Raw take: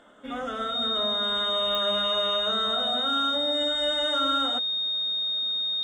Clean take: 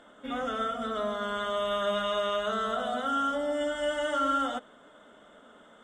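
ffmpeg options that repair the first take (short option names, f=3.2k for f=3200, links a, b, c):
-af "adeclick=t=4,bandreject=f=3.7k:w=30"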